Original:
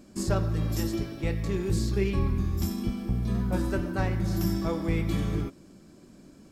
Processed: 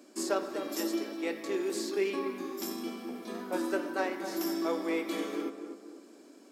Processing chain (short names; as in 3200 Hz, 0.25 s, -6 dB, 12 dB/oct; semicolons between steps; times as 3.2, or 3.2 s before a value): steep high-pass 260 Hz 48 dB/oct; on a send: tape echo 0.248 s, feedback 48%, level -7 dB, low-pass 1200 Hz